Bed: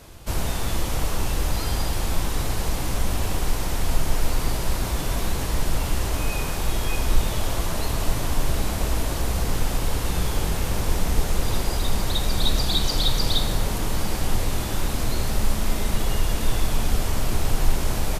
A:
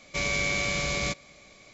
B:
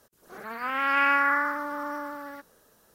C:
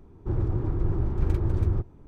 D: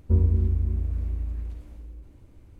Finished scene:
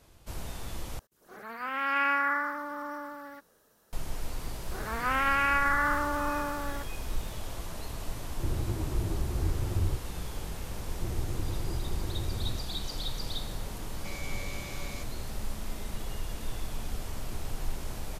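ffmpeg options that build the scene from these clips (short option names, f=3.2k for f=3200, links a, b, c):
-filter_complex "[2:a]asplit=2[a][b];[3:a]asplit=2[c][d];[0:a]volume=-13.5dB[e];[b]alimiter=level_in=19.5dB:limit=-1dB:release=50:level=0:latency=1[f];[c]asplit=2[g][h];[h]adelay=10.1,afreqshift=-2.9[i];[g][i]amix=inputs=2:normalize=1[j];[d]acompressor=threshold=-23dB:ratio=6:attack=3.2:release=140:knee=1:detection=peak[k];[e]asplit=2[l][m];[l]atrim=end=0.994[n];[a]atrim=end=2.94,asetpts=PTS-STARTPTS,volume=-4.5dB[o];[m]atrim=start=3.926[p];[f]atrim=end=2.94,asetpts=PTS-STARTPTS,volume=-17.5dB,afade=t=in:d=0.004:c=hsin,afade=t=out:st=2.936:d=0.004:c=hsin,adelay=4420[q];[j]atrim=end=2.07,asetpts=PTS-STARTPTS,volume=-2.5dB,afade=t=in:d=0.004:c=hsin,afade=t=out:st=2.066:d=0.004:c=hsin,adelay=8140[r];[k]atrim=end=2.07,asetpts=PTS-STARTPTS,volume=-7dB,afade=t=in:d=0.004:c=hsin,afade=t=out:st=2.066:d=0.004:c=hsin,adelay=10750[s];[1:a]atrim=end=1.73,asetpts=PTS-STARTPTS,volume=-15.5dB,afade=t=in:d=0.004:c=hsin,afade=t=out:st=1.726:d=0.004:c=hsin,adelay=13900[t];[n][o]acrossfade=d=0.004:c1=hsin:c2=hsin[u];[u][p]acrossfade=d=0.004:c1=hsin:c2=hsin[v];[v][q][r][s][t]amix=inputs=5:normalize=0"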